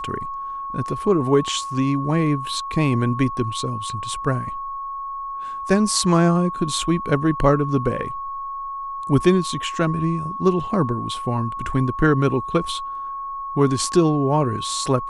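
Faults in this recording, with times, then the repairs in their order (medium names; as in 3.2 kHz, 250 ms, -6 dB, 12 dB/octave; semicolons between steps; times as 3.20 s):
whine 1.1 kHz -27 dBFS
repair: band-stop 1.1 kHz, Q 30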